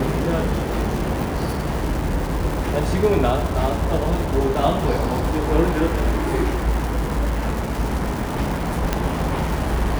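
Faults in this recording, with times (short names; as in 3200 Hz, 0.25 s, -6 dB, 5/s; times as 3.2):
crackle 590/s -26 dBFS
8.93 pop -5 dBFS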